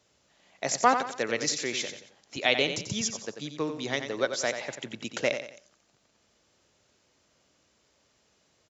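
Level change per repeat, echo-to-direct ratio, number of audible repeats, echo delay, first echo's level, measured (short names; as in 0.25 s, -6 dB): -8.5 dB, -8.0 dB, 3, 90 ms, -8.5 dB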